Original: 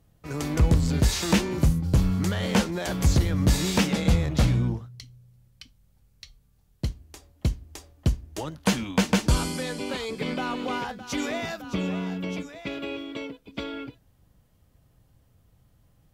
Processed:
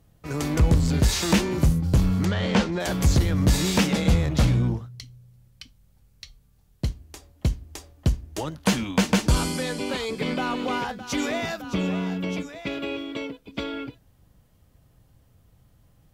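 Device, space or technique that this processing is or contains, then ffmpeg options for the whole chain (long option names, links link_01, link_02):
parallel distortion: -filter_complex "[0:a]asplit=2[link_01][link_02];[link_02]asoftclip=type=hard:threshold=-24.5dB,volume=-8dB[link_03];[link_01][link_03]amix=inputs=2:normalize=0,asplit=3[link_04][link_05][link_06];[link_04]afade=type=out:start_time=2.24:duration=0.02[link_07];[link_05]lowpass=5000,afade=type=in:start_time=2.24:duration=0.02,afade=type=out:start_time=2.79:duration=0.02[link_08];[link_06]afade=type=in:start_time=2.79:duration=0.02[link_09];[link_07][link_08][link_09]amix=inputs=3:normalize=0"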